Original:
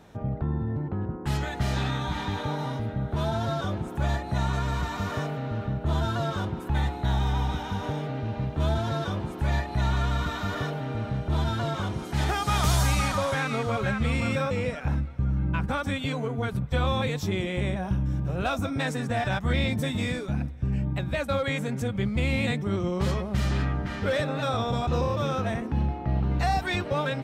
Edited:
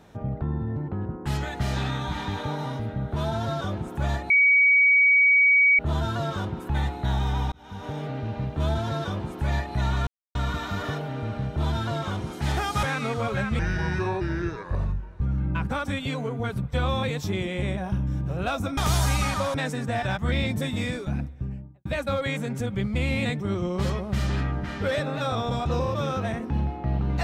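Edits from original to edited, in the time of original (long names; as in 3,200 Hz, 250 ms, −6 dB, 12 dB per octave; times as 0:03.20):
0:04.30–0:05.79: beep over 2,260 Hz −14.5 dBFS
0:07.52–0:08.06: fade in
0:10.07: splice in silence 0.28 s
0:12.55–0:13.32: move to 0:18.76
0:14.08–0:15.20: play speed 69%
0:20.36–0:21.07: fade out and dull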